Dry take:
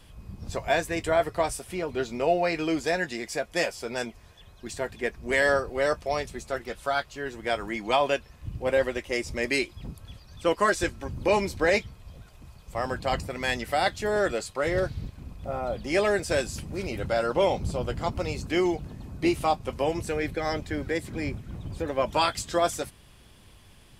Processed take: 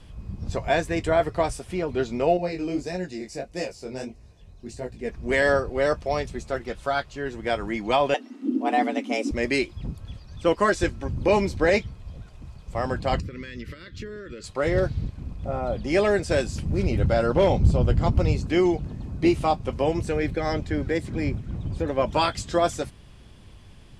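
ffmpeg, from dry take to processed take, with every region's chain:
ffmpeg -i in.wav -filter_complex "[0:a]asettb=1/sr,asplit=3[link_01][link_02][link_03];[link_01]atrim=end=2.374[link_04];[link_02]atrim=start=2.37:end=5.09,asetpts=PTS-STARTPTS,afade=type=in:duration=0.004:curve=qsin,afade=type=out:start_time=2.716:duration=0.004:curve=qsin,equalizer=frequency=1400:width=0.8:gain=-9,bandreject=frequency=3300:width=5.6,flanger=delay=16:depth=7.3:speed=1.6[link_05];[link_03]atrim=start=5.086[link_06];[link_04][link_05]acrossfade=duration=0.004:curve1=hsin:curve2=qsin[link_07];[link_07][link_06]acrossfade=duration=0.004:curve1=qsin:curve2=hsin,asettb=1/sr,asplit=3[link_08][link_09][link_10];[link_08]atrim=end=8.144[link_11];[link_09]atrim=start=8.14:end=9.31,asetpts=PTS-STARTPTS,afade=type=in:duration=0.004:curve=qsin,afade=type=out:start_time=1.166:duration=0.004:curve=qsin,asubboost=boost=10:cutoff=190,afreqshift=200[link_12];[link_10]atrim=start=9.306[link_13];[link_11][link_12]acrossfade=duration=0.004:curve1=hsin:curve2=qsin[link_14];[link_14][link_13]acrossfade=duration=0.004:curve1=qsin:curve2=hsin,asettb=1/sr,asplit=3[link_15][link_16][link_17];[link_15]atrim=end=13.204[link_18];[link_16]atrim=start=13.2:end=14.44,asetpts=PTS-STARTPTS,afade=type=in:duration=0.004:curve=qsin,afade=type=out:start_time=1.236:duration=0.004:curve=qsin,equalizer=frequency=9000:width=1.1:gain=-13,acompressor=threshold=-34dB:ratio=16:attack=3.2:release=140:knee=1:detection=peak,asuperstop=centerf=770:order=4:qfactor=0.95[link_19];[link_17]atrim=start=14.436[link_20];[link_18][link_19]acrossfade=duration=0.004:curve1=hsin:curve2=qsin[link_21];[link_21][link_20]acrossfade=duration=0.004:curve1=qsin:curve2=hsin,asettb=1/sr,asplit=3[link_22][link_23][link_24];[link_22]atrim=end=16.654[link_25];[link_23]atrim=start=16.65:end=18.37,asetpts=PTS-STARTPTS,afade=type=in:duration=0.004:curve=qsin,afade=type=out:start_time=1.716:duration=0.004:curve=qsin,lowshelf=frequency=190:gain=8,asoftclip=type=hard:threshold=-15dB[link_26];[link_24]atrim=start=18.366[link_27];[link_25][link_26]acrossfade=duration=0.004:curve1=hsin:curve2=qsin[link_28];[link_28][link_27]acrossfade=duration=0.004:curve1=qsin:curve2=hsin,lowpass=8100,lowshelf=frequency=430:gain=7" out.wav

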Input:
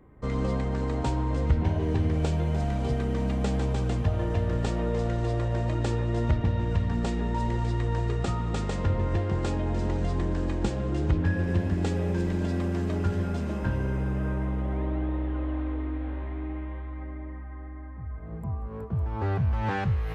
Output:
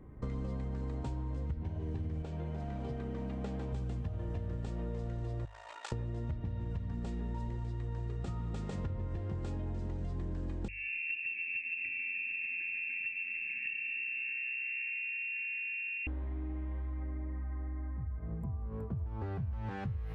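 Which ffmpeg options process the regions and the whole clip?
ffmpeg -i in.wav -filter_complex "[0:a]asettb=1/sr,asplit=3[link_01][link_02][link_03];[link_01]atrim=end=2.224[link_04];[link_02]atrim=start=2.22:end=3.73,asetpts=PTS-STARTPTS,afade=type=in:duration=0.004:curve=qsin,afade=type=out:start_time=1.506:duration=0.004:curve=qsin,lowpass=frequency=2900:poles=1,lowshelf=frequency=170:gain=-11[link_05];[link_03]atrim=start=3.726[link_06];[link_04][link_05]acrossfade=duration=0.004:curve1=hsin:curve2=qsin[link_07];[link_07][link_06]acrossfade=duration=0.004:curve1=qsin:curve2=hsin,asettb=1/sr,asplit=3[link_08][link_09][link_10];[link_08]atrim=end=5.454[link_11];[link_09]atrim=start=5.45:end=5.92,asetpts=PTS-STARTPTS,afade=type=in:duration=0.004:curve=qsin,afade=type=out:start_time=0.466:duration=0.004:curve=qsin,highpass=frequency=870:width=0.5412,highpass=frequency=870:width=1.3066,aeval=exprs='val(0)*sin(2*PI*28*n/s)':channel_layout=same[link_12];[link_10]atrim=start=5.916[link_13];[link_11][link_12]acrossfade=duration=0.004:curve1=hsin:curve2=qsin[link_14];[link_14][link_13]acrossfade=duration=0.004:curve1=qsin:curve2=hsin,asettb=1/sr,asplit=3[link_15][link_16][link_17];[link_15]atrim=end=10.684[link_18];[link_16]atrim=start=10.68:end=16.07,asetpts=PTS-STARTPTS,afade=type=in:duration=0.004:curve=qsin,afade=type=out:start_time=5.386:duration=0.004:curve=qsin,lowpass=frequency=2400:width_type=q:width=0.5098,lowpass=frequency=2400:width_type=q:width=0.6013,lowpass=frequency=2400:width_type=q:width=0.9,lowpass=frequency=2400:width_type=q:width=2.563,afreqshift=-2800,asuperstop=centerf=780:order=20:qfactor=0.6[link_19];[link_17]atrim=start=16.066[link_20];[link_18][link_19]acrossfade=duration=0.004:curve1=hsin:curve2=qsin[link_21];[link_21][link_20]acrossfade=duration=0.004:curve1=qsin:curve2=hsin,lowshelf=frequency=280:gain=9,bandreject=frequency=50:width_type=h:width=6,bandreject=frequency=100:width_type=h:width=6,acompressor=threshold=-32dB:ratio=6,volume=-3.5dB" out.wav

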